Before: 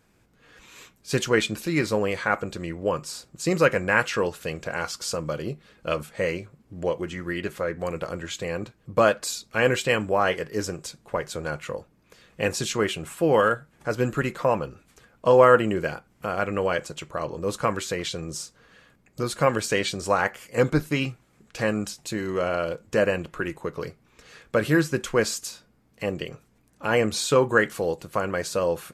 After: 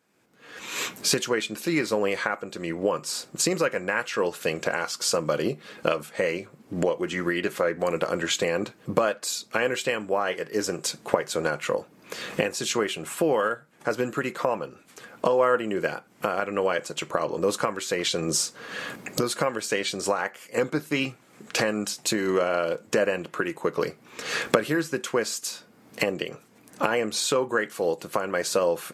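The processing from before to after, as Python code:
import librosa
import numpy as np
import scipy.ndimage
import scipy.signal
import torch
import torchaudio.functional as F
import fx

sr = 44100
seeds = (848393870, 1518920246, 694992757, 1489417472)

y = fx.recorder_agc(x, sr, target_db=-8.0, rise_db_per_s=29.0, max_gain_db=30)
y = scipy.signal.sosfilt(scipy.signal.butter(2, 220.0, 'highpass', fs=sr, output='sos'), y)
y = y * librosa.db_to_amplitude(-6.0)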